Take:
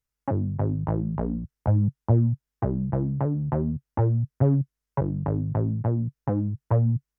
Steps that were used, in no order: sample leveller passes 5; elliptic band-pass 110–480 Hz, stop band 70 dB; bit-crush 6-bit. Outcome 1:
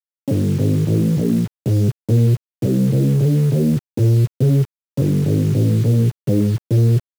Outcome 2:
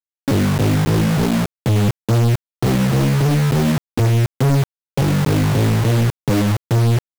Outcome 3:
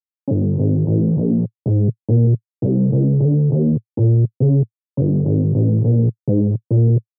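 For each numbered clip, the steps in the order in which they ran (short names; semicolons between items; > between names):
sample leveller > elliptic band-pass > bit-crush; elliptic band-pass > bit-crush > sample leveller; bit-crush > sample leveller > elliptic band-pass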